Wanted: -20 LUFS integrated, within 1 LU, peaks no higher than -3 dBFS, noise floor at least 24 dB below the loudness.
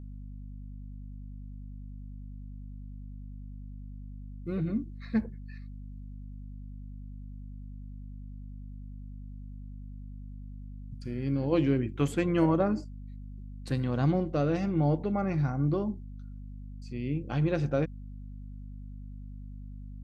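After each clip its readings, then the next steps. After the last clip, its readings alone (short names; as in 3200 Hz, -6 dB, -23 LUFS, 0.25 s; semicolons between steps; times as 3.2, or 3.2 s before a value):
hum 50 Hz; harmonics up to 250 Hz; hum level -40 dBFS; loudness -29.5 LUFS; peak -13.5 dBFS; loudness target -20.0 LUFS
-> de-hum 50 Hz, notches 5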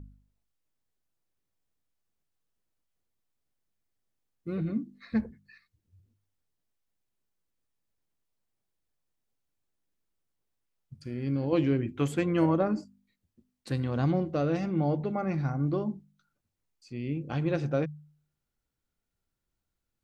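hum none; loudness -30.0 LUFS; peak -14.0 dBFS; loudness target -20.0 LUFS
-> gain +10 dB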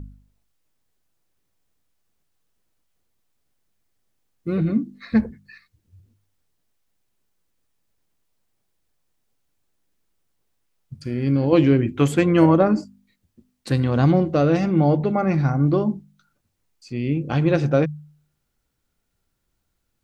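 loudness -20.0 LUFS; peak -4.0 dBFS; noise floor -74 dBFS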